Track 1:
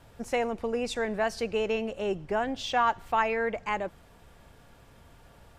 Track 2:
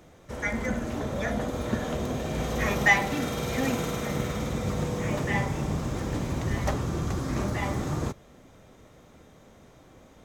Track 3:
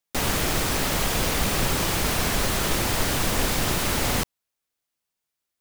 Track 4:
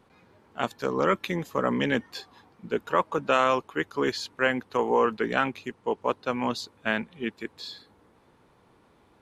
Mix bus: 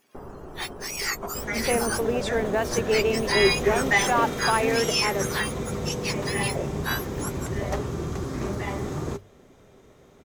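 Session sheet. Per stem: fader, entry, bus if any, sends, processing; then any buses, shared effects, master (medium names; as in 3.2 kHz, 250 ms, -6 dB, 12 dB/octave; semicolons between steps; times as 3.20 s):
+1.5 dB, 1.35 s, no send, modulation noise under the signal 31 dB
-1.5 dB, 1.05 s, no send, none
-8.0 dB, 0.00 s, no send, inverse Chebyshev low-pass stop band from 3.2 kHz, stop band 50 dB; auto duck -7 dB, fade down 0.25 s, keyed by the fourth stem
+0.5 dB, 0.00 s, no send, spectrum inverted on a logarithmic axis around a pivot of 1.6 kHz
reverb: none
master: peaking EQ 400 Hz +10 dB 0.21 oct; hum notches 50/100 Hz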